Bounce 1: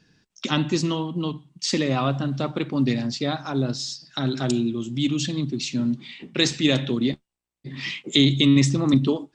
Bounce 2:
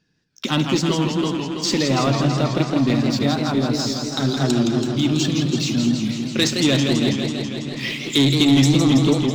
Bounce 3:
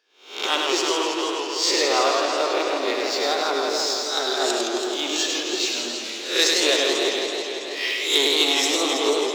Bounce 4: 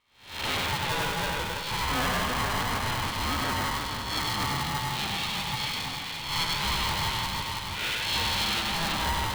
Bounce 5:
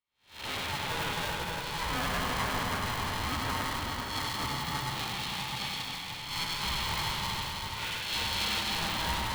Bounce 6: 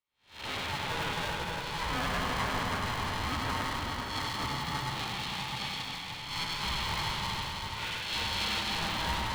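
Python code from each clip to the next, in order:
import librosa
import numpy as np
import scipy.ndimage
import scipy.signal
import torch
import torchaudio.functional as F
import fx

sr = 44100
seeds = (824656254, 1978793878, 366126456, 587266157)

y1 = fx.leveller(x, sr, passes=2)
y1 = fx.echo_warbled(y1, sr, ms=164, feedback_pct=76, rate_hz=2.8, cents=170, wet_db=-5.5)
y1 = y1 * 10.0 ** (-4.0 / 20.0)
y2 = fx.spec_swells(y1, sr, rise_s=0.49)
y2 = scipy.signal.sosfilt(scipy.signal.ellip(4, 1.0, 80, 390.0, 'highpass', fs=sr, output='sos'), y2)
y2 = y2 + 10.0 ** (-4.0 / 20.0) * np.pad(y2, (int(101 * sr / 1000.0), 0))[:len(y2)]
y3 = 10.0 ** (-22.0 / 20.0) * np.tanh(y2 / 10.0 ** (-22.0 / 20.0))
y3 = scipy.signal.sosfilt(scipy.signal.cheby1(6, 3, 4000.0, 'lowpass', fs=sr, output='sos'), y3)
y3 = y3 * np.sign(np.sin(2.0 * np.pi * 500.0 * np.arange(len(y3)) / sr))
y4 = fx.echo_multitap(y3, sr, ms=(259, 574), db=(-5.5, -6.0))
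y4 = fx.band_widen(y4, sr, depth_pct=40)
y4 = y4 * 10.0 ** (-5.5 / 20.0)
y5 = fx.high_shelf(y4, sr, hz=9300.0, db=-10.0)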